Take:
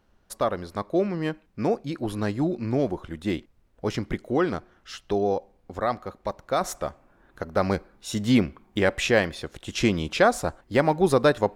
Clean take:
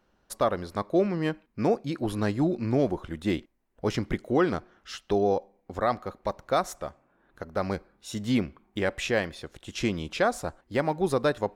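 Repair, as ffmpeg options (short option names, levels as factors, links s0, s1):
-af "agate=range=0.0891:threshold=0.00251,asetnsamples=n=441:p=0,asendcmd='6.61 volume volume -5.5dB',volume=1"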